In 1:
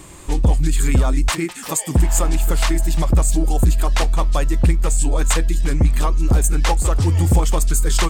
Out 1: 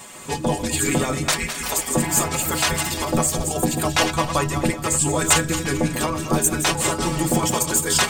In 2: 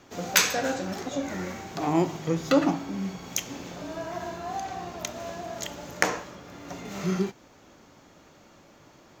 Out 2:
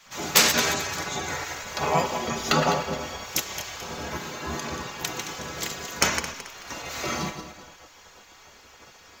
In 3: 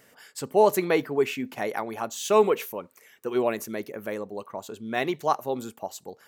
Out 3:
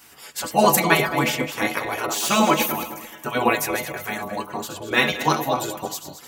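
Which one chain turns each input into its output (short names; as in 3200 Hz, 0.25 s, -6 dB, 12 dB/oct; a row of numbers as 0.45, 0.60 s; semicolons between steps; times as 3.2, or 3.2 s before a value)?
regenerating reverse delay 0.109 s, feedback 55%, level -9.5 dB; metallic resonator 74 Hz, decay 0.24 s, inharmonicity 0.008; spectral gate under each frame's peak -10 dB weak; normalise peaks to -2 dBFS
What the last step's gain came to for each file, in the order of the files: +12.0, +16.0, +20.5 dB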